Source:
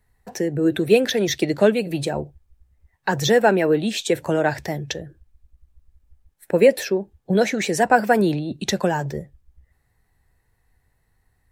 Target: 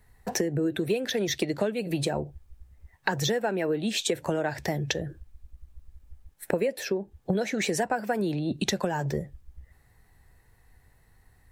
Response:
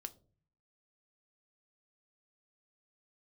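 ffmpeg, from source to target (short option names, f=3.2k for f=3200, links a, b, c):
-af "acompressor=threshold=-30dB:ratio=10,volume=6dB"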